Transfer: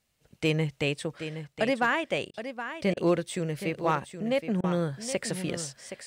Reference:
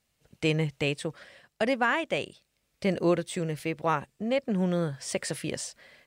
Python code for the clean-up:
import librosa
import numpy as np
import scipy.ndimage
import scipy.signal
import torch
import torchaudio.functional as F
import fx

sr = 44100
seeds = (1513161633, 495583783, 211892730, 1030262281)

y = fx.fix_declip(x, sr, threshold_db=-15.5)
y = fx.fix_interpolate(y, sr, at_s=(2.31, 2.94, 4.61), length_ms=26.0)
y = fx.fix_echo_inverse(y, sr, delay_ms=770, level_db=-10.5)